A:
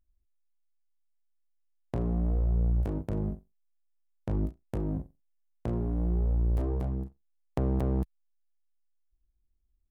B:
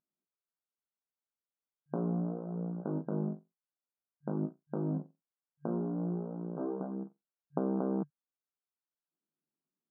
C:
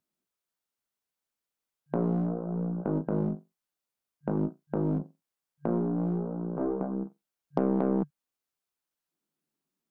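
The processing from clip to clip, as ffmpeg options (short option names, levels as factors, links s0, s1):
-af "afftfilt=real='re*between(b*sr/4096,140,1600)':imag='im*between(b*sr/4096,140,1600)':win_size=4096:overlap=0.75"
-filter_complex "[0:a]aeval=exprs='0.178*(cos(1*acos(clip(val(0)/0.178,-1,1)))-cos(1*PI/2))+0.00501*(cos(8*acos(clip(val(0)/0.178,-1,1)))-cos(8*PI/2))':c=same,acrossover=split=190[s0][s1];[s0]asoftclip=type=hard:threshold=0.0119[s2];[s2][s1]amix=inputs=2:normalize=0,volume=2"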